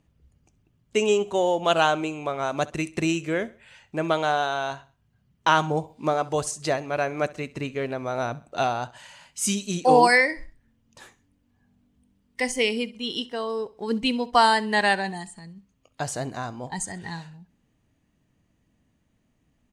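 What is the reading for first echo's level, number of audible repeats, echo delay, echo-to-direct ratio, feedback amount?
-20.0 dB, 2, 66 ms, -19.5 dB, 36%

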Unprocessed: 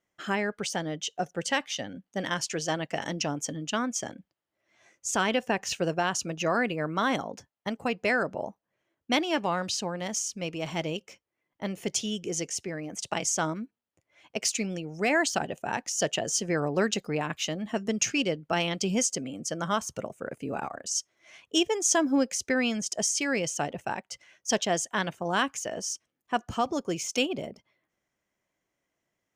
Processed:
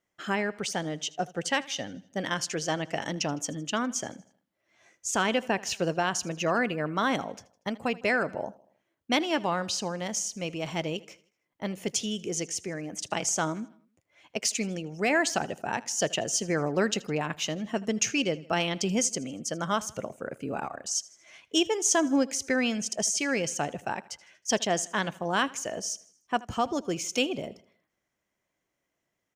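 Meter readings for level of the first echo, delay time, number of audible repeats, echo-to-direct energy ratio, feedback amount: -21.0 dB, 79 ms, 3, -20.0 dB, 49%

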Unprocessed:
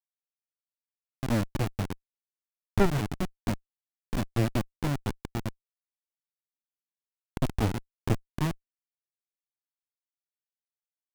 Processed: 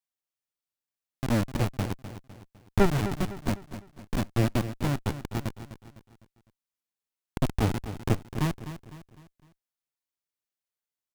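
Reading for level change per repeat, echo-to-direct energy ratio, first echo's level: -7.5 dB, -11.0 dB, -12.0 dB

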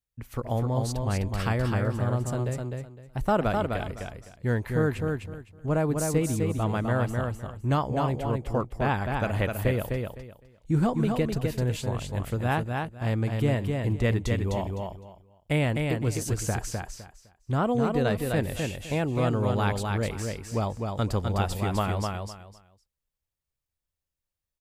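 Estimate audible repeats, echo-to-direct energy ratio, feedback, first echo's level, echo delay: 3, -4.0 dB, 22%, -4.0 dB, 0.255 s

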